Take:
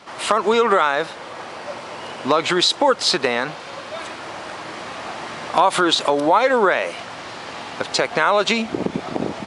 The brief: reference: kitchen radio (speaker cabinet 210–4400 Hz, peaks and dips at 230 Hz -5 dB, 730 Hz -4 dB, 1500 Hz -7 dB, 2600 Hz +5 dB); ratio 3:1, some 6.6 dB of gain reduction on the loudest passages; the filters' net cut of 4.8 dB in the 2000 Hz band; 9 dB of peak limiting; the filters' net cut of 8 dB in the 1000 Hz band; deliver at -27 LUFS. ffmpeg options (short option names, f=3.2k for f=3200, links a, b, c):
-af "equalizer=f=1k:t=o:g=-6.5,equalizer=f=2k:t=o:g=-3,acompressor=threshold=-23dB:ratio=3,alimiter=limit=-16.5dB:level=0:latency=1,highpass=210,equalizer=f=230:t=q:w=4:g=-5,equalizer=f=730:t=q:w=4:g=-4,equalizer=f=1.5k:t=q:w=4:g=-7,equalizer=f=2.6k:t=q:w=4:g=5,lowpass=f=4.4k:w=0.5412,lowpass=f=4.4k:w=1.3066,volume=3.5dB"